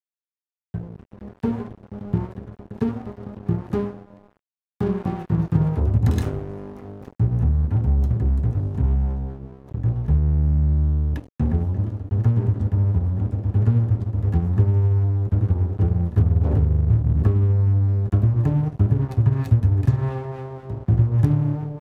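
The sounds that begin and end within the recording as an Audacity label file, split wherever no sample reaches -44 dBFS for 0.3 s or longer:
0.740000	4.300000	sound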